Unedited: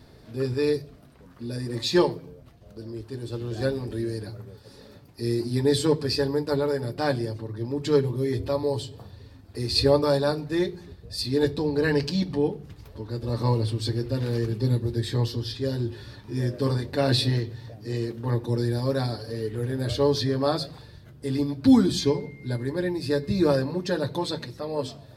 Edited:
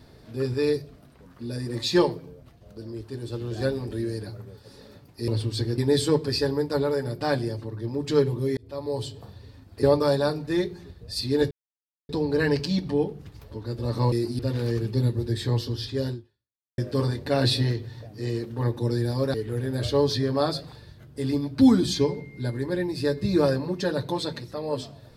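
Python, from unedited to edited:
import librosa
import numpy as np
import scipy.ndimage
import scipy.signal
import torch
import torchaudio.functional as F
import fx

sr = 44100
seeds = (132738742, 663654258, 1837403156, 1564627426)

y = fx.edit(x, sr, fx.swap(start_s=5.28, length_s=0.27, other_s=13.56, other_length_s=0.5),
    fx.fade_in_span(start_s=8.34, length_s=0.5),
    fx.cut(start_s=9.6, length_s=0.25),
    fx.insert_silence(at_s=11.53, length_s=0.58),
    fx.fade_out_span(start_s=15.77, length_s=0.68, curve='exp'),
    fx.cut(start_s=19.01, length_s=0.39), tone=tone)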